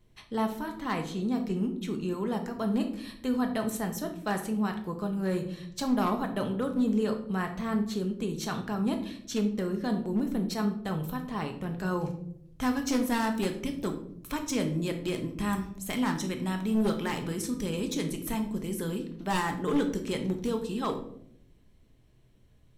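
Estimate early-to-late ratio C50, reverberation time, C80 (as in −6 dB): 10.0 dB, 0.70 s, 13.5 dB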